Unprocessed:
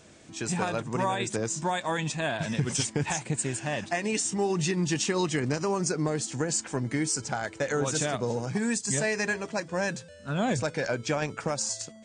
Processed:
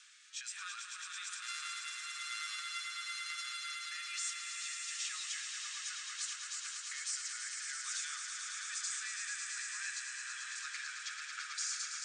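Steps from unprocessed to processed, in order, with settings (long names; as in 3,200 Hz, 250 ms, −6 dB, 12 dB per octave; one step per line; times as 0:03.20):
0:01.42–0:03.85: samples sorted by size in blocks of 64 samples
brickwall limiter −26 dBFS, peak gain reduction 11 dB
downward compressor 3 to 1, threshold −38 dBFS, peak gain reduction 7 dB
Chebyshev high-pass filter 1,200 Hz, order 6
parametric band 3,600 Hz +3.5 dB 1.1 octaves
convolution reverb RT60 0.70 s, pre-delay 5 ms, DRR 12 dB
downsampling to 22,050 Hz
rotating-speaker cabinet horn 1.1 Hz
echo that builds up and dies away 110 ms, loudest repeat 5, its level −7 dB
level +1.5 dB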